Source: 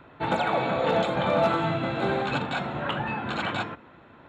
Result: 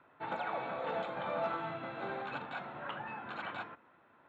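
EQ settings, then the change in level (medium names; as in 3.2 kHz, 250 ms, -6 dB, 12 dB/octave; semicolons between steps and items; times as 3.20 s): low-pass 1.3 kHz 12 dB/octave; differentiator; bass shelf 240 Hz +9.5 dB; +7.0 dB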